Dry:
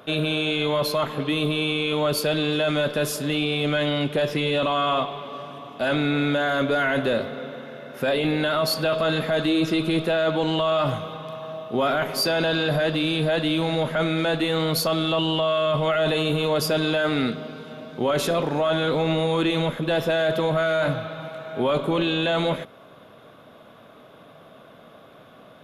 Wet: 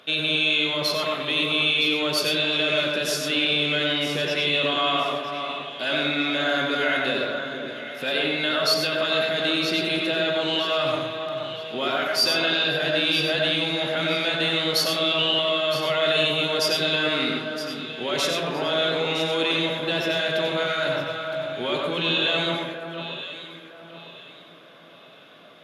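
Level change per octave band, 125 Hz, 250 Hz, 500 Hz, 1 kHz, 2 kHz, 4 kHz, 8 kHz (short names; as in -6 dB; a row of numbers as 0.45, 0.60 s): -7.5, -4.5, -2.5, -2.0, +3.5, +6.0, +1.5 dB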